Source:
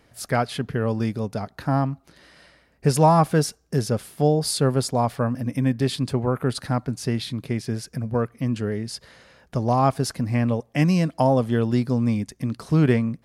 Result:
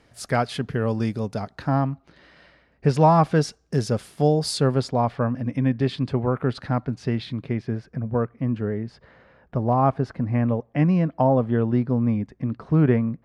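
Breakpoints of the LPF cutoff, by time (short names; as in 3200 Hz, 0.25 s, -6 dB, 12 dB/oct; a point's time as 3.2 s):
1.44 s 9000 Hz
1.84 s 3600 Hz
2.91 s 3600 Hz
3.95 s 8100 Hz
4.49 s 8100 Hz
5 s 3100 Hz
7.33 s 3100 Hz
7.84 s 1700 Hz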